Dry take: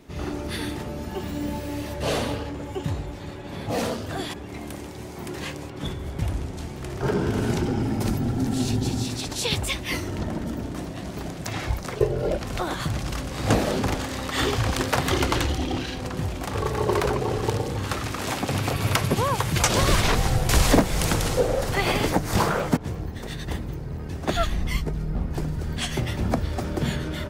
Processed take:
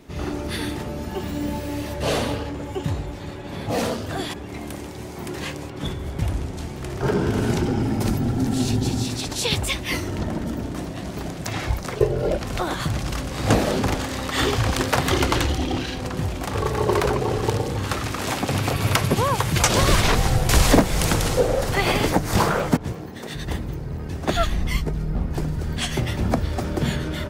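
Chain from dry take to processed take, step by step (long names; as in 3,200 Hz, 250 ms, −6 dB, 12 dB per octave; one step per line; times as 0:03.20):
0:22.92–0:23.35: high-pass filter 170 Hz 12 dB per octave
level +2.5 dB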